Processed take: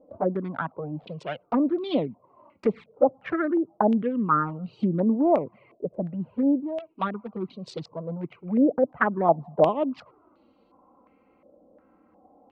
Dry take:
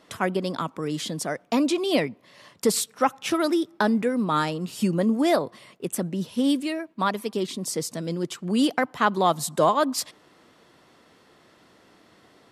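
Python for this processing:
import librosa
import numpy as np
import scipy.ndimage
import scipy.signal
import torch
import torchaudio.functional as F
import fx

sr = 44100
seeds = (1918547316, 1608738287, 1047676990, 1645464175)

y = fx.wiener(x, sr, points=25)
y = fx.env_lowpass_down(y, sr, base_hz=1000.0, full_db=-19.0)
y = fx.env_flanger(y, sr, rest_ms=3.9, full_db=-18.0)
y = fx.filter_held_lowpass(y, sr, hz=2.8, low_hz=590.0, high_hz=3800.0)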